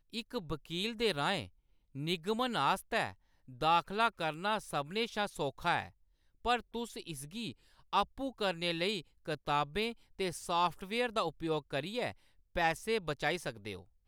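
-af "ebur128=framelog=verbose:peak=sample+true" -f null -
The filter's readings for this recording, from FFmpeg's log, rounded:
Integrated loudness:
  I:         -35.1 LUFS
  Threshold: -45.4 LUFS
Loudness range:
  LRA:         3.1 LU
  Threshold: -55.3 LUFS
  LRA low:   -37.0 LUFS
  LRA high:  -33.8 LUFS
Sample peak:
  Peak:      -16.8 dBFS
True peak:
  Peak:      -16.8 dBFS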